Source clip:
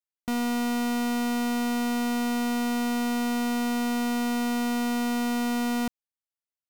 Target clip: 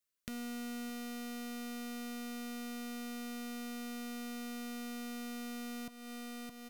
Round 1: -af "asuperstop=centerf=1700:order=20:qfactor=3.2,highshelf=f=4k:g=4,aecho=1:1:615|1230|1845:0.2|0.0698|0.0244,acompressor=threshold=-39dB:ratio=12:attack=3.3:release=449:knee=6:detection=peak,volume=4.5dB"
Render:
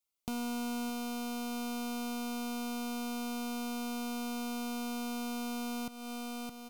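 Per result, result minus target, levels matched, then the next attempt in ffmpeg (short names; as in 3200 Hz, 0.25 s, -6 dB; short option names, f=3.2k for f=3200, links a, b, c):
compressor: peak gain reduction -5.5 dB; 1000 Hz band +3.5 dB
-af "asuperstop=centerf=1700:order=20:qfactor=3.2,highshelf=f=4k:g=4,aecho=1:1:615|1230|1845:0.2|0.0698|0.0244,acompressor=threshold=-45.5dB:ratio=12:attack=3.3:release=449:knee=6:detection=peak,volume=4.5dB"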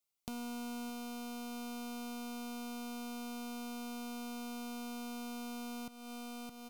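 1000 Hz band +3.5 dB
-af "asuperstop=centerf=840:order=20:qfactor=3.2,highshelf=f=4k:g=4,aecho=1:1:615|1230|1845:0.2|0.0698|0.0244,acompressor=threshold=-45.5dB:ratio=12:attack=3.3:release=449:knee=6:detection=peak,volume=4.5dB"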